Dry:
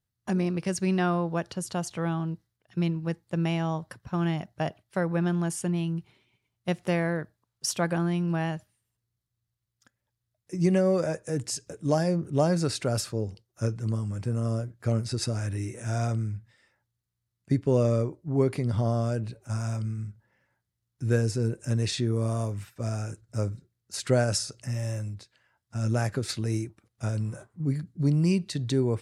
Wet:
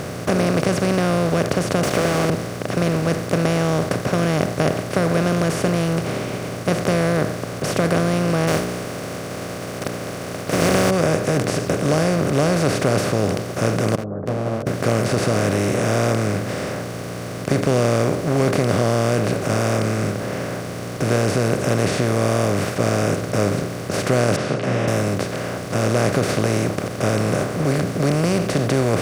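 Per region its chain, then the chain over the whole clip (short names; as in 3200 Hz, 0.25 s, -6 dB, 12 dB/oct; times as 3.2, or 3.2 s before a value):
1.83–2.3 HPF 650 Hz + sample leveller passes 5
8.47–10.89 spectral contrast lowered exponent 0.32 + notches 60/120/180/240/300/360/420 Hz
13.95–14.67 elliptic low-pass 610 Hz, stop band 80 dB + gate -26 dBFS, range -33 dB + ensemble effect
24.36–24.88 Chebyshev band-pass 120–3100 Hz, order 4 + doubler 32 ms -3 dB + ensemble effect
whole clip: per-bin compression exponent 0.2; high shelf 2700 Hz -9.5 dB; notch 850 Hz, Q 14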